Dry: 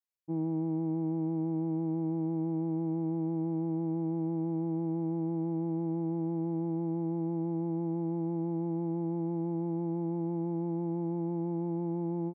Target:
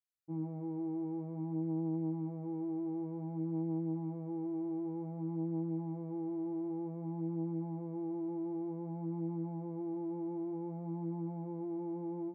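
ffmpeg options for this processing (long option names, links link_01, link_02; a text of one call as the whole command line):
ffmpeg -i in.wav -af "flanger=delay=18.5:depth=2.7:speed=0.54,volume=-3dB" out.wav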